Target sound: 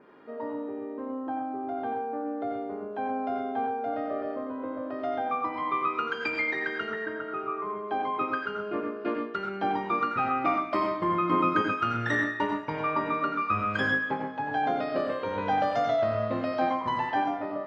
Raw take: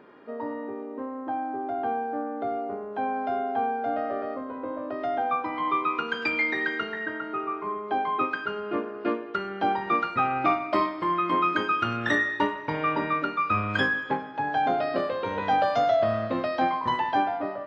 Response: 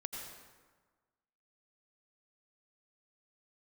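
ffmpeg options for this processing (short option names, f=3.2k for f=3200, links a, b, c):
-filter_complex "[0:a]asettb=1/sr,asplit=3[a][b][c];[a]atrim=end=10.914[d];[b]atrim=start=10.91:end=11.62,asetpts=PTS-STARTPTS,afade=t=in:d=0.004:c=qsin,afade=t=out:st=0.706:d=0.004:c=qsin,lowshelf=f=380:g=9.5[e];[c]atrim=start=11.616[f];[d][e]acrossfade=d=0.004:c1=hsin:c2=qsin[g];[g][f]acrossfade=d=0.004:c1=qsin:c2=hsin[h];[1:a]atrim=start_sample=2205,atrim=end_sample=6174[i];[h][i]afir=irnorm=-1:irlink=0,adynamicequalizer=threshold=0.00178:dfrequency=3600:dqfactor=3.1:tfrequency=3600:tqfactor=3.1:attack=5:release=100:ratio=0.375:range=2:mode=cutabove:tftype=bell"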